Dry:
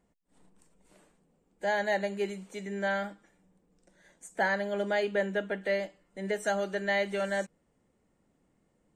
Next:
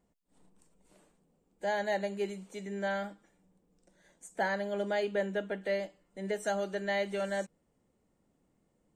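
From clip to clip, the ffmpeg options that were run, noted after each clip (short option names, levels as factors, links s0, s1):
-af "equalizer=f=1800:w=1.3:g=-3.5,volume=0.794"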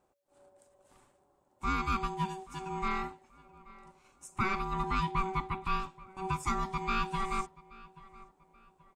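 -filter_complex "[0:a]asplit=2[s0][s1];[s1]adelay=830,lowpass=f=2900:p=1,volume=0.0944,asplit=2[s2][s3];[s3]adelay=830,lowpass=f=2900:p=1,volume=0.38,asplit=2[s4][s5];[s5]adelay=830,lowpass=f=2900:p=1,volume=0.38[s6];[s0][s2][s4][s6]amix=inputs=4:normalize=0,aeval=exprs='val(0)*sin(2*PI*570*n/s)':c=same,volume=1.5"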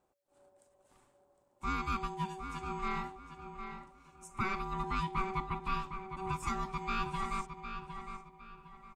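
-filter_complex "[0:a]asplit=2[s0][s1];[s1]adelay=758,lowpass=f=3900:p=1,volume=0.398,asplit=2[s2][s3];[s3]adelay=758,lowpass=f=3900:p=1,volume=0.33,asplit=2[s4][s5];[s5]adelay=758,lowpass=f=3900:p=1,volume=0.33,asplit=2[s6][s7];[s7]adelay=758,lowpass=f=3900:p=1,volume=0.33[s8];[s0][s2][s4][s6][s8]amix=inputs=5:normalize=0,volume=0.668"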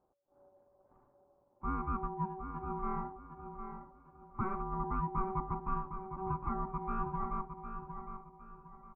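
-af "lowpass=f=1200:w=0.5412,lowpass=f=1200:w=1.3066,volume=1.12"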